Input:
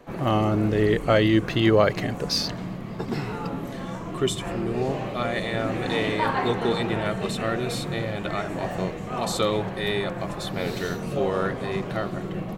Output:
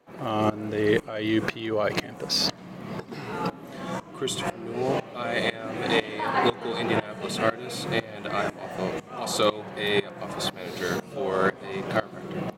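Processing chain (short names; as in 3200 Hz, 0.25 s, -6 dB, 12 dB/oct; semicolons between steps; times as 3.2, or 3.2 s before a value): HPF 250 Hz 6 dB/oct; limiter -15.5 dBFS, peak gain reduction 9 dB; dB-ramp tremolo swelling 2 Hz, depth 19 dB; gain +7 dB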